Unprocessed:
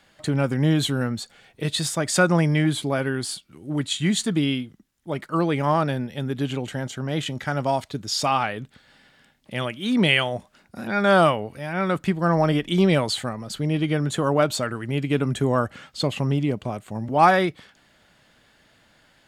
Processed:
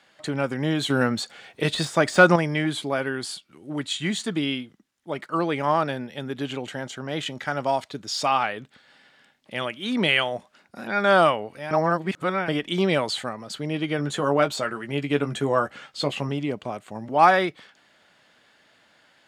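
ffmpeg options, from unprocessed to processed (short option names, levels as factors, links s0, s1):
-filter_complex "[0:a]asettb=1/sr,asplit=3[s0][s1][s2];[s0]atrim=end=0.904[s3];[s1]atrim=start=0.9:end=2.36,asetpts=PTS-STARTPTS,afade=t=in:d=0.004:c=qsin,afade=t=out:st=1.456:d=0.004:c=qsin,acontrast=86[s4];[s2]atrim=start=2.356[s5];[s3][s4]acrossfade=d=0.004:c1=hsin:c2=qsin[s6];[s6][s5]acrossfade=d=0.004:c1=qsin:c2=hsin,asettb=1/sr,asplit=3[s7][s8][s9];[s7]atrim=end=13.974[s10];[s8]atrim=start=13.97:end=16.29,asetpts=PTS-STARTPTS,afade=t=in:d=0.004:c=qsin,afade=t=out:st=2.316:d=0.004:c=qsin,asplit=2[s11][s12];[s12]adelay=14,volume=0.447[s13];[s11][s13]amix=inputs=2:normalize=0,atrim=end_sample=102312[s14];[s9]atrim=start=16.286[s15];[s10][s14]acrossfade=d=0.004:c1=hsin:c2=qsin[s16];[s16][s15]acrossfade=d=0.004:c1=qsin:c2=hsin,asplit=3[s17][s18][s19];[s17]atrim=end=11.712[s20];[s18]atrim=start=11.708:end=12.482,asetpts=PTS-STARTPTS,areverse[s21];[s19]atrim=start=12.478[s22];[s20][s21]acrossfade=d=0.004:c1=hsin:c2=hsin[s23];[s23][s22]acrossfade=d=0.004:c1=hsin:c2=hsin,highpass=f=390:p=1,deesser=0.5,highshelf=f=10000:g=-11.5,volume=1.12"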